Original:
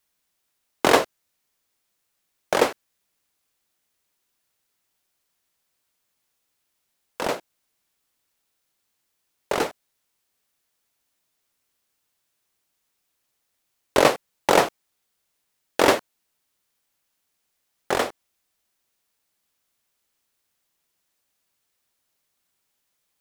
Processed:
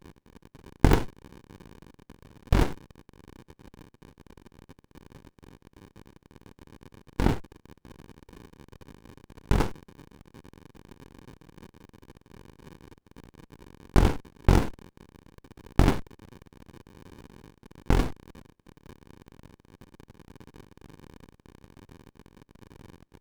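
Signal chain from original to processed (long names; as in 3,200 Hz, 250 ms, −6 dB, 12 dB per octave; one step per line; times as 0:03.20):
downward compressor, threshold −17 dBFS, peak gain reduction 7.5 dB
surface crackle 130 per second −44 dBFS
windowed peak hold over 65 samples
level +2.5 dB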